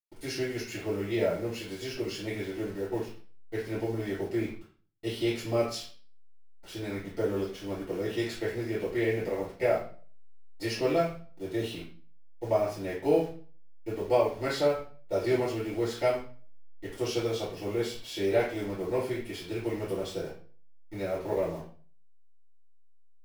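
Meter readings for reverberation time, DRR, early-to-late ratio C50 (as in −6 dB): 0.40 s, −10.5 dB, 4.5 dB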